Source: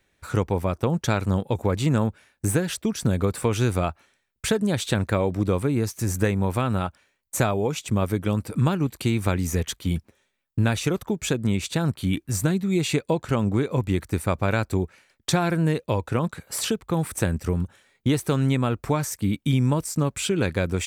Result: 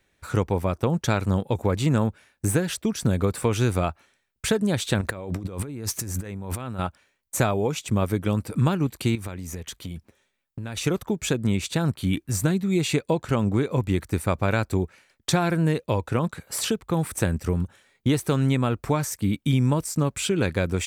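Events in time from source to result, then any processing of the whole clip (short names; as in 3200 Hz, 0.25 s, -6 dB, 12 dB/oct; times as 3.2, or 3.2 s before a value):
5.01–6.79 negative-ratio compressor -32 dBFS
9.15–10.77 compressor 5:1, threshold -31 dBFS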